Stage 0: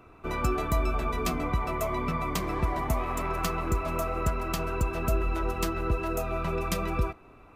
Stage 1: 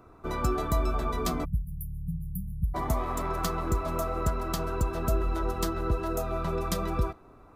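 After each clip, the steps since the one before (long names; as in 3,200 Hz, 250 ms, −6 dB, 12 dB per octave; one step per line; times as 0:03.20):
parametric band 2,600 Hz −13 dB 0.64 octaves
time-frequency box erased 0:01.45–0:02.75, 210–9,800 Hz
dynamic equaliser 3,300 Hz, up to +5 dB, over −56 dBFS, Q 1.4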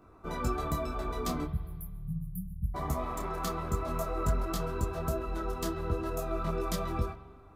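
on a send at −12 dB: convolution reverb RT60 1.6 s, pre-delay 43 ms
on the sum: micro pitch shift up and down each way 16 cents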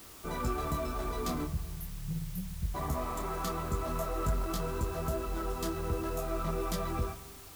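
in parallel at −3.5 dB: hard clipping −33.5 dBFS, distortion −7 dB
on the sum: bit-depth reduction 8 bits, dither triangular
level −4 dB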